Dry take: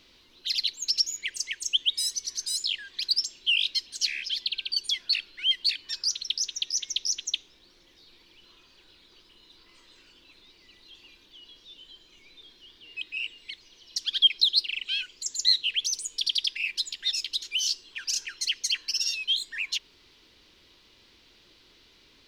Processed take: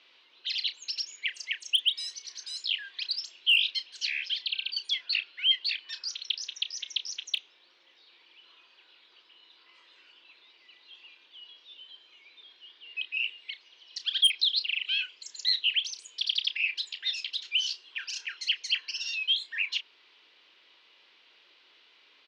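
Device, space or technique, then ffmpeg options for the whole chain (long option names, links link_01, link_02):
megaphone: -filter_complex "[0:a]highpass=630,lowpass=3200,equalizer=frequency=2800:width_type=o:width=0.57:gain=4,asoftclip=type=hard:threshold=-16dB,asplit=2[link_01][link_02];[link_02]adelay=32,volume=-11dB[link_03];[link_01][link_03]amix=inputs=2:normalize=0"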